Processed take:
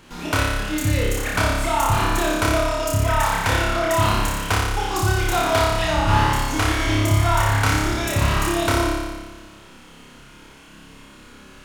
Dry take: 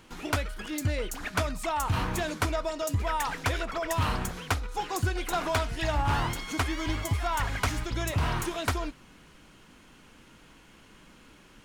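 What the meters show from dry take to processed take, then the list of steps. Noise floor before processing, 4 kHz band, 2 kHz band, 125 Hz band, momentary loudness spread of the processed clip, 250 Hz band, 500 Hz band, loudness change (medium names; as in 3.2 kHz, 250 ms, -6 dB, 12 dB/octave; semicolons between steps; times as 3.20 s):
-55 dBFS, +10.0 dB, +10.0 dB, +10.0 dB, 4 LU, +10.5 dB, +10.0 dB, +10.0 dB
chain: flutter echo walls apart 5 m, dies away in 1.3 s; trim +4.5 dB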